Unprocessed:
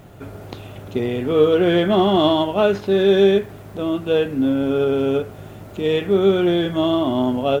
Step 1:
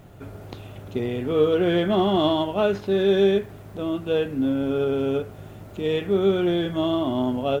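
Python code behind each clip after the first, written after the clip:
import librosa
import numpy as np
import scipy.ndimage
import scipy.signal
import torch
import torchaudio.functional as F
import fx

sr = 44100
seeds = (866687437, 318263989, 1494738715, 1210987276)

y = fx.low_shelf(x, sr, hz=120.0, db=4.0)
y = y * librosa.db_to_amplitude(-5.0)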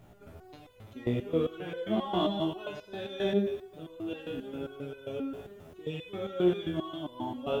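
y = fx.rev_schroeder(x, sr, rt60_s=1.4, comb_ms=25, drr_db=6.0)
y = fx.resonator_held(y, sr, hz=7.5, low_hz=60.0, high_hz=500.0)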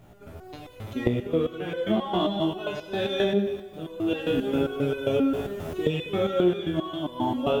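y = fx.recorder_agc(x, sr, target_db=-18.0, rise_db_per_s=11.0, max_gain_db=30)
y = fx.echo_feedback(y, sr, ms=194, feedback_pct=46, wet_db=-19.0)
y = y * librosa.db_to_amplitude(3.0)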